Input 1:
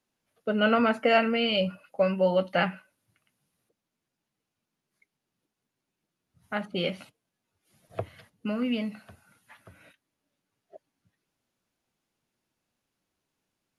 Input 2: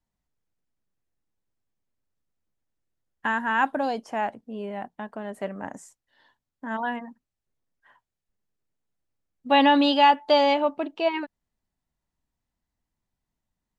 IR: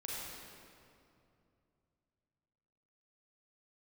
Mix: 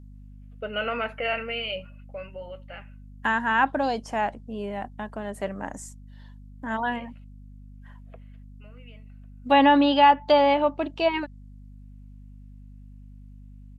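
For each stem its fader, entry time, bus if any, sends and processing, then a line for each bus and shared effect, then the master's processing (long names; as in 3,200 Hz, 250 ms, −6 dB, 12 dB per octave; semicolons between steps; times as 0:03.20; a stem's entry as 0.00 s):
−14.5 dB, 0.15 s, no send, parametric band 510 Hz +8 dB 1 octave; brickwall limiter −12 dBFS, peak gain reduction 6 dB; drawn EQ curve 280 Hz 0 dB, 2,700 Hz +15 dB, 5,500 Hz −7 dB; automatic ducking −17 dB, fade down 1.95 s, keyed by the second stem
+1.0 dB, 0.00 s, no send, mains hum 50 Hz, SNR 18 dB; treble cut that deepens with the level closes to 2,200 Hz, closed at −16 dBFS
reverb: not used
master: high-shelf EQ 4,600 Hz +8 dB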